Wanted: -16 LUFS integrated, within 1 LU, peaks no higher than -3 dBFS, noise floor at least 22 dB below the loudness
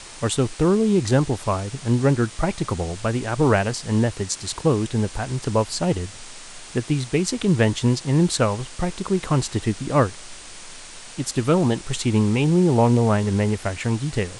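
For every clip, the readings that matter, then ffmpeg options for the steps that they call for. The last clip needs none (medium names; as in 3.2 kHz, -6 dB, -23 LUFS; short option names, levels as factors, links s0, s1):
noise floor -40 dBFS; noise floor target -44 dBFS; loudness -22.0 LUFS; peak level -4.5 dBFS; loudness target -16.0 LUFS
-> -af "afftdn=nr=6:nf=-40"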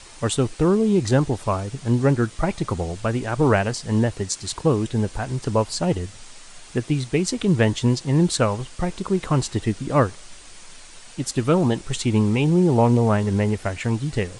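noise floor -44 dBFS; loudness -22.0 LUFS; peak level -5.0 dBFS; loudness target -16.0 LUFS
-> -af "volume=2,alimiter=limit=0.708:level=0:latency=1"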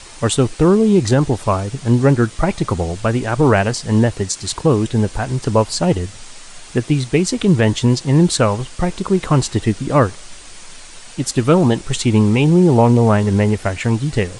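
loudness -16.0 LUFS; peak level -3.0 dBFS; noise floor -38 dBFS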